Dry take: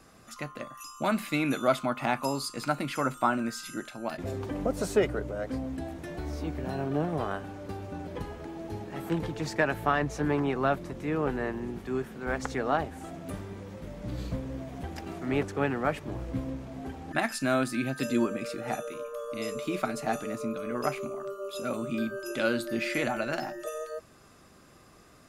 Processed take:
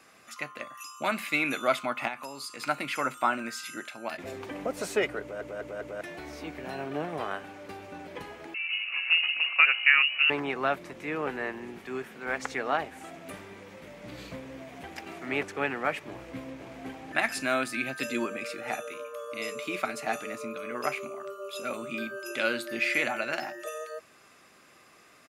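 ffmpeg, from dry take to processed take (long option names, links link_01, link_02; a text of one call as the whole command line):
ffmpeg -i in.wav -filter_complex "[0:a]asplit=3[link_01][link_02][link_03];[link_01]afade=type=out:start_time=2.07:duration=0.02[link_04];[link_02]acompressor=threshold=-37dB:ratio=2.5:attack=3.2:release=140:knee=1:detection=peak,afade=type=in:start_time=2.07:duration=0.02,afade=type=out:start_time=2.59:duration=0.02[link_05];[link_03]afade=type=in:start_time=2.59:duration=0.02[link_06];[link_04][link_05][link_06]amix=inputs=3:normalize=0,asettb=1/sr,asplit=3[link_07][link_08][link_09];[link_07]atrim=end=8.544[link_10];[link_08]atrim=start=8.54:end=10.3,asetpts=PTS-STARTPTS,afade=type=in:duration=0.004:curve=qsin,afade=type=out:start_time=1.756:duration=0.004:curve=qsin,lowpass=frequency=2600:width_type=q:width=0.5098,lowpass=frequency=2600:width_type=q:width=0.6013,lowpass=frequency=2600:width_type=q:width=0.9,lowpass=frequency=2600:width_type=q:width=2.563,afreqshift=-3000[link_11];[link_09]atrim=start=10.296[link_12];[link_10][link_11]acrossfade=duration=0.004:curve1=hsin:curve2=qsin[link_13];[link_13][link_12]acrossfade=duration=0.004:curve1=qsin:curve2=hsin,asplit=2[link_14][link_15];[link_15]afade=type=in:start_time=16.08:duration=0.01,afade=type=out:start_time=16.89:duration=0.01,aecho=0:1:510|1020|1530|2040|2550|3060:0.501187|0.250594|0.125297|0.0626484|0.0313242|0.0156621[link_16];[link_14][link_16]amix=inputs=2:normalize=0,asplit=5[link_17][link_18][link_19][link_20][link_21];[link_17]atrim=end=5.412[link_22];[link_18]atrim=start=5.208:end=5.412[link_23];[link_19]atrim=start=5.208:end=5.412[link_24];[link_20]atrim=start=5.208:end=5.412[link_25];[link_21]atrim=start=6.008[link_26];[link_22][link_23]acrossfade=duration=0.004:curve1=hsin:curve2=hsin[link_27];[link_27][link_24]acrossfade=duration=0.004:curve1=hsin:curve2=hsin[link_28];[link_28][link_25]acrossfade=duration=0.004:curve1=hsin:curve2=hsin[link_29];[link_29][link_26]acrossfade=duration=0.004:curve1=hsin:curve2=hsin,highpass=frequency=460:poles=1,equalizer=frequency=2300:width=1.7:gain=7.5" out.wav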